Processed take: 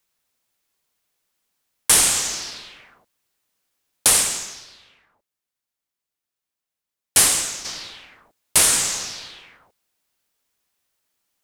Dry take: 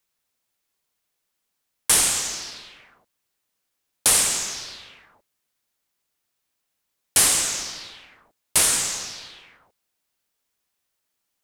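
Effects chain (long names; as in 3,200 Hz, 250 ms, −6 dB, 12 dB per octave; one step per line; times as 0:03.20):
0:04.07–0:07.65: expander for the loud parts 1.5 to 1, over −37 dBFS
level +3 dB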